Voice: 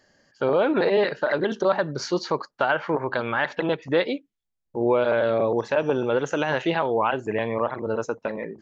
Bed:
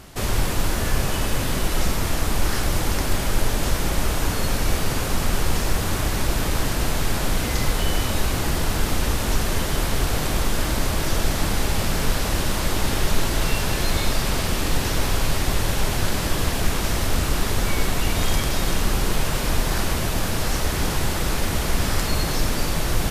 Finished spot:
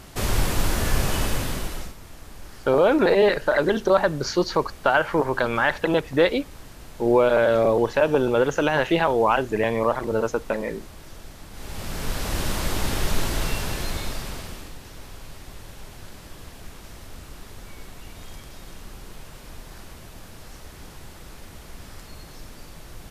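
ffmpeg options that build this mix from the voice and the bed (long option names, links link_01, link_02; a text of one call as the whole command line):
ffmpeg -i stem1.wav -i stem2.wav -filter_complex "[0:a]adelay=2250,volume=3dB[link_01];[1:a]volume=17dB,afade=type=out:start_time=1.21:duration=0.73:silence=0.1,afade=type=in:start_time=11.51:duration=0.94:silence=0.133352,afade=type=out:start_time=13.29:duration=1.46:silence=0.149624[link_02];[link_01][link_02]amix=inputs=2:normalize=0" out.wav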